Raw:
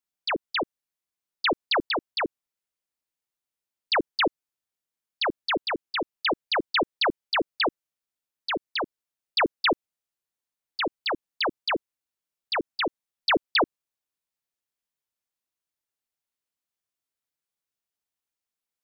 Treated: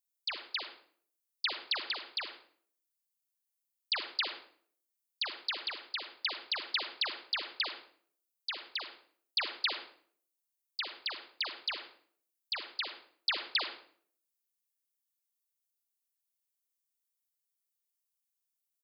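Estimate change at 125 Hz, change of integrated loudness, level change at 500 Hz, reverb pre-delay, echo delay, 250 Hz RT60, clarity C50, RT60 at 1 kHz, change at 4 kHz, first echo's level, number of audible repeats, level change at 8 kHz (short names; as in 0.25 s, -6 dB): under -30 dB, -8.5 dB, -21.5 dB, 39 ms, 0.102 s, 0.70 s, 8.0 dB, 0.50 s, -5.0 dB, -15.5 dB, 1, n/a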